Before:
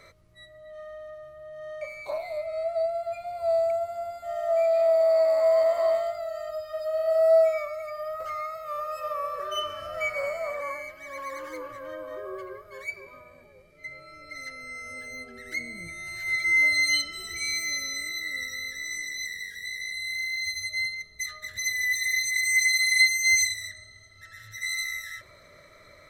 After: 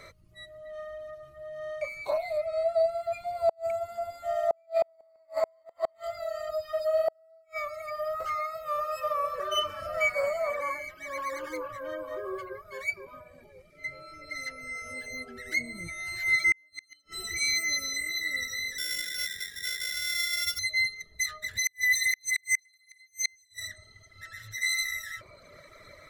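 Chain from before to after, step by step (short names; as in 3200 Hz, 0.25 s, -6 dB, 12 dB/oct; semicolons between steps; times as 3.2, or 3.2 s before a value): 18.78–20.59 sample sorter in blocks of 8 samples; reverb removal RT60 0.89 s; flipped gate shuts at -19 dBFS, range -41 dB; gain +3.5 dB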